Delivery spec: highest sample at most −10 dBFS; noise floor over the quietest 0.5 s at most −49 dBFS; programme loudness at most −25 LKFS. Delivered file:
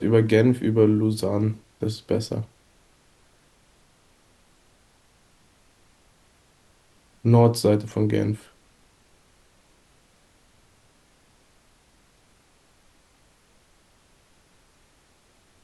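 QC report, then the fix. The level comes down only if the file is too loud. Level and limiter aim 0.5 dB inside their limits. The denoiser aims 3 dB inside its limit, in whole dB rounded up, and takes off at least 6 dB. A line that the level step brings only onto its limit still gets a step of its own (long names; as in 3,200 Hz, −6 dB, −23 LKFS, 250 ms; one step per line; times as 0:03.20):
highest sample −4.5 dBFS: out of spec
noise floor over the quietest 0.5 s −60 dBFS: in spec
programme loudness −22.0 LKFS: out of spec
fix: level −3.5 dB
brickwall limiter −10.5 dBFS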